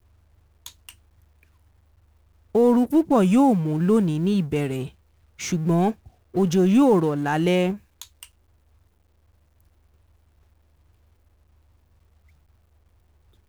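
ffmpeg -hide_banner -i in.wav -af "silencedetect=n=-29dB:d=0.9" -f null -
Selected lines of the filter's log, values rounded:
silence_start: 0.89
silence_end: 2.55 | silence_duration: 1.66
silence_start: 8.23
silence_end: 13.48 | silence_duration: 5.25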